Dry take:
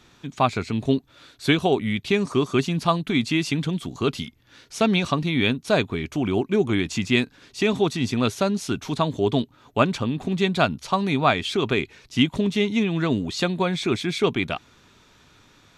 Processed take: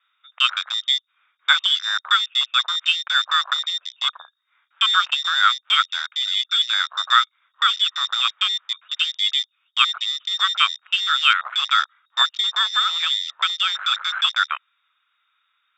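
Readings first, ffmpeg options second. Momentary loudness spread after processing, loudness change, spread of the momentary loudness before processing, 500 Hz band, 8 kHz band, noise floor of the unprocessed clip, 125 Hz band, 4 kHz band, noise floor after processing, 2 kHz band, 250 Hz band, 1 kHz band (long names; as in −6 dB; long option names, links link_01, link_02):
6 LU, +4.0 dB, 6 LU, below −30 dB, +1.5 dB, −56 dBFS, below −40 dB, +13.5 dB, −71 dBFS, +6.5 dB, below −40 dB, +4.5 dB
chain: -af "lowpass=frequency=3200:width_type=q:width=0.5098,lowpass=frequency=3200:width_type=q:width=0.6013,lowpass=frequency=3200:width_type=q:width=0.9,lowpass=frequency=3200:width_type=q:width=2.563,afreqshift=-3800,highpass=frequency=1300:width_type=q:width=4.8,afwtdn=0.0562,volume=-1dB"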